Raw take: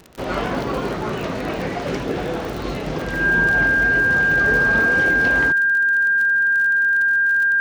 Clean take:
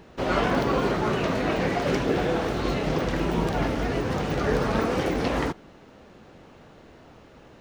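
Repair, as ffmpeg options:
-af "adeclick=t=4,bandreject=f=1.6k:w=30"

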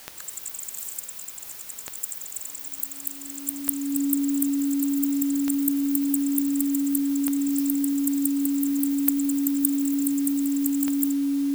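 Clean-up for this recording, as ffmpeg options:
-af "adeclick=t=4,bandreject=f=280:w=30,afwtdn=0.0056"

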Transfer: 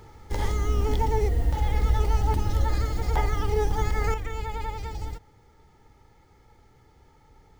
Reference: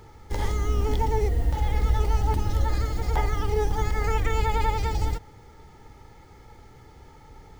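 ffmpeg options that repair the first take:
-af "asetnsamples=n=441:p=0,asendcmd='4.14 volume volume 8dB',volume=0dB"

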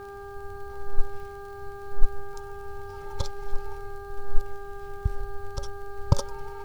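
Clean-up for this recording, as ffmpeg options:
-af "adeclick=t=4,bandreject=f=400.3:t=h:w=4,bandreject=f=800.6:t=h:w=4,bandreject=f=1.2009k:t=h:w=4,bandreject=f=1.6012k:t=h:w=4"

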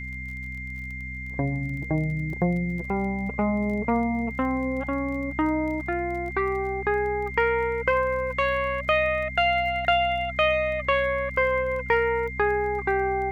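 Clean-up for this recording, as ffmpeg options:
-af "adeclick=t=4,bandreject=f=63.5:t=h:w=4,bandreject=f=127:t=h:w=4,bandreject=f=190.5:t=h:w=4,bandreject=f=254:t=h:w=4,bandreject=f=2.1k:w=30,agate=range=-21dB:threshold=-26dB"

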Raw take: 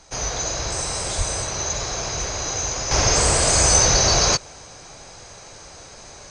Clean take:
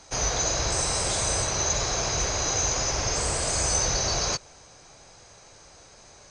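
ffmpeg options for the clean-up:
-filter_complex "[0:a]asplit=3[a][b][c];[a]afade=t=out:st=1.17:d=0.02[d];[b]highpass=f=140:w=0.5412,highpass=f=140:w=1.3066,afade=t=in:st=1.17:d=0.02,afade=t=out:st=1.29:d=0.02[e];[c]afade=t=in:st=1.29:d=0.02[f];[d][e][f]amix=inputs=3:normalize=0,asplit=3[g][h][i];[g]afade=t=out:st=3.82:d=0.02[j];[h]highpass=f=140:w=0.5412,highpass=f=140:w=1.3066,afade=t=in:st=3.82:d=0.02,afade=t=out:st=3.94:d=0.02[k];[i]afade=t=in:st=3.94:d=0.02[l];[j][k][l]amix=inputs=3:normalize=0,agate=range=-21dB:threshold=-34dB,asetnsamples=n=441:p=0,asendcmd='2.91 volume volume -9dB',volume=0dB"

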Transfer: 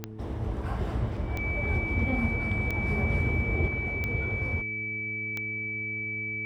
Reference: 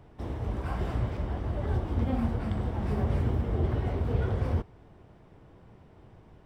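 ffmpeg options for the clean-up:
-af "adeclick=t=4,bandreject=f=108.7:t=h:w=4,bandreject=f=217.4:t=h:w=4,bandreject=f=326.1:t=h:w=4,bandreject=f=434.8:t=h:w=4,bandreject=f=2.3k:w=30,asetnsamples=n=441:p=0,asendcmd='3.68 volume volume 4.5dB',volume=0dB"

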